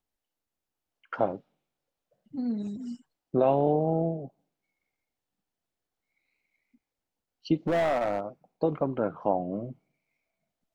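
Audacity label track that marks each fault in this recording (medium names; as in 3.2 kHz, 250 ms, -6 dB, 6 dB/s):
7.670000	8.200000	clipped -22.5 dBFS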